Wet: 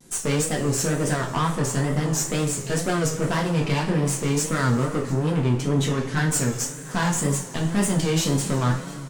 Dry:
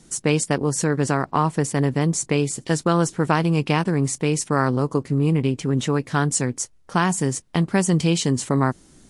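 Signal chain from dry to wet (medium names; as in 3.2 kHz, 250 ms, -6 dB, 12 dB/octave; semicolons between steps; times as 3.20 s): valve stage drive 21 dB, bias 0.65; delay 702 ms -20.5 dB; two-slope reverb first 0.33 s, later 3.1 s, from -18 dB, DRR -2 dB; wow and flutter 110 cents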